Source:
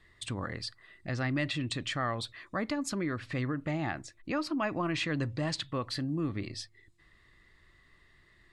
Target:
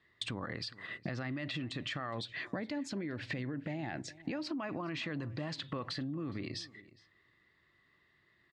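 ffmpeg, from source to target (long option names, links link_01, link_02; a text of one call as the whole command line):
ffmpeg -i in.wav -filter_complex "[0:a]agate=range=-21dB:threshold=-55dB:ratio=16:detection=peak,asettb=1/sr,asplit=3[link_01][link_02][link_03];[link_01]atrim=end=2.184[link_04];[link_02]atrim=start=2.18:end=4.52,asetpts=PTS-STARTPTS,afade=type=in:duration=0.004:curve=qsin,afade=type=out:start_time=2.336:duration=0.004:curve=qsin,equalizer=frequency=1200:width_type=o:width=0.37:gain=-13.5[link_05];[link_03]atrim=start=4.516[link_06];[link_04][link_05]acrossfade=duration=0.004:curve1=hsin:curve2=qsin[link_07];[link_07][link_06]acrossfade=duration=0.004:curve1=qsin:curve2=hsin,alimiter=level_in=7dB:limit=-24dB:level=0:latency=1:release=84,volume=-7dB,acompressor=threshold=-50dB:ratio=12,highpass=120,lowpass=4900,asplit=2[link_08][link_09];[link_09]adelay=414,volume=-19dB,highshelf=frequency=4000:gain=-9.32[link_10];[link_08][link_10]amix=inputs=2:normalize=0,volume=15dB" out.wav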